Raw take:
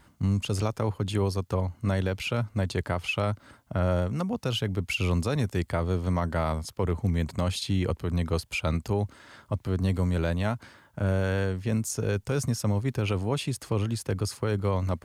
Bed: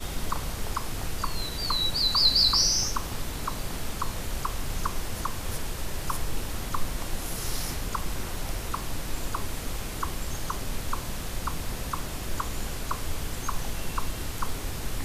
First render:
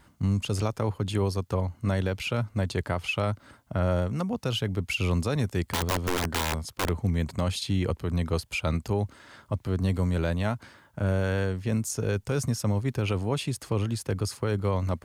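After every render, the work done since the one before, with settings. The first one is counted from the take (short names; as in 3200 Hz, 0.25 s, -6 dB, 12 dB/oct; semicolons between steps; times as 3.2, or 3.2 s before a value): 5.69–6.89 wrapped overs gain 20.5 dB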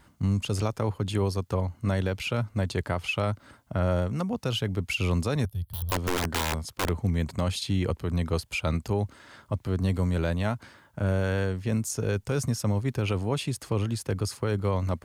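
5.45–5.92 EQ curve 110 Hz 0 dB, 330 Hz -28 dB, 660 Hz -18 dB, 1500 Hz -25 dB, 2200 Hz -30 dB, 3300 Hz -10 dB, 7600 Hz -25 dB, 11000 Hz +1 dB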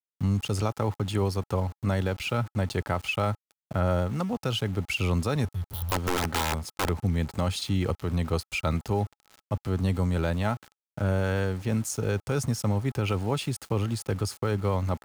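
sample gate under -41.5 dBFS; small resonant body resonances 830/1300 Hz, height 7 dB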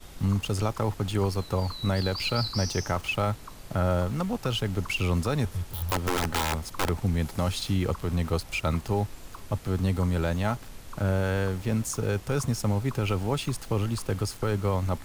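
add bed -12.5 dB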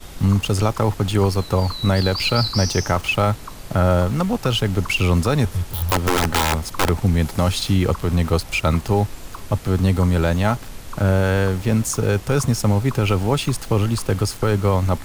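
gain +8.5 dB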